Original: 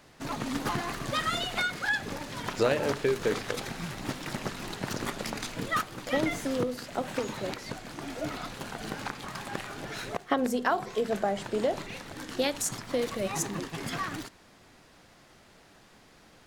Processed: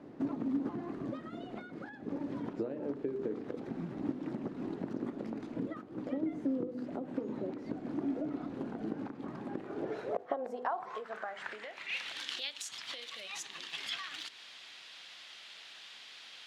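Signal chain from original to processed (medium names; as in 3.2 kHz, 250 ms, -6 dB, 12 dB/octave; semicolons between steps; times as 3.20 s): hum notches 50/100/150/200/250/300/350/400/450/500 Hz; compression 12:1, threshold -42 dBFS, peak gain reduction 21.5 dB; band-pass sweep 290 Hz -> 3.3 kHz, 9.52–12.19 s; trim +15.5 dB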